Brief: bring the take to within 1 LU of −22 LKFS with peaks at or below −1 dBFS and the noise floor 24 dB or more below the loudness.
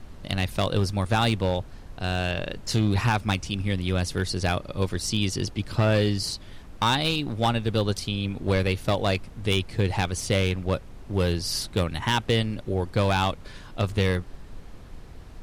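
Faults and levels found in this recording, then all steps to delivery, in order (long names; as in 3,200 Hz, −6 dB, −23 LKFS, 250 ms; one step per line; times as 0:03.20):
share of clipped samples 0.9%; peaks flattened at −15.5 dBFS; background noise floor −43 dBFS; target noise floor −50 dBFS; integrated loudness −26.0 LKFS; sample peak −15.5 dBFS; target loudness −22.0 LKFS
→ clipped peaks rebuilt −15.5 dBFS
noise reduction from a noise print 7 dB
level +4 dB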